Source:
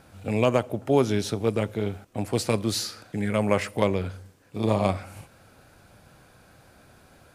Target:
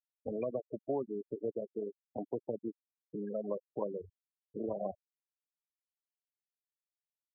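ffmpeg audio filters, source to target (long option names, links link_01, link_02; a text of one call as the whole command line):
ffmpeg -i in.wav -filter_complex "[0:a]acrossover=split=230|700[link_01][link_02][link_03];[link_01]acompressor=threshold=-40dB:ratio=4[link_04];[link_02]acompressor=threshold=-33dB:ratio=4[link_05];[link_03]acompressor=threshold=-42dB:ratio=4[link_06];[link_04][link_05][link_06]amix=inputs=3:normalize=0,bass=frequency=250:gain=-7,treble=frequency=4000:gain=-10,afftfilt=real='re*gte(hypot(re,im),0.0562)':imag='im*gte(hypot(re,im),0.0562)':win_size=1024:overlap=0.75,volume=-2dB" out.wav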